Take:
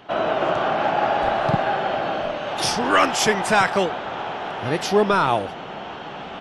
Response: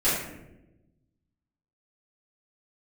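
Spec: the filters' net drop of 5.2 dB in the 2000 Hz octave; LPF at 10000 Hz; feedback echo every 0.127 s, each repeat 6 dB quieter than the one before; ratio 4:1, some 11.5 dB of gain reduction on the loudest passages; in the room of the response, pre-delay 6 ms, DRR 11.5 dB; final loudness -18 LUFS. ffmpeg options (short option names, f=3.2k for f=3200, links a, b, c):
-filter_complex "[0:a]lowpass=10k,equalizer=f=2k:t=o:g=-7.5,acompressor=threshold=-28dB:ratio=4,aecho=1:1:127|254|381|508|635|762:0.501|0.251|0.125|0.0626|0.0313|0.0157,asplit=2[a][b];[1:a]atrim=start_sample=2205,adelay=6[c];[b][c]afir=irnorm=-1:irlink=0,volume=-25dB[d];[a][d]amix=inputs=2:normalize=0,volume=11dB"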